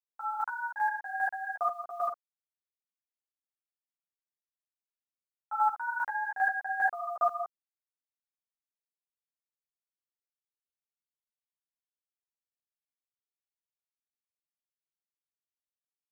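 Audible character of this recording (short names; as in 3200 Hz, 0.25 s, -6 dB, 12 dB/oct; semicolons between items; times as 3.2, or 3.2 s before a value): a quantiser's noise floor 10-bit, dither none; chopped level 2.5 Hz, depth 65%, duty 20%; a shimmering, thickened sound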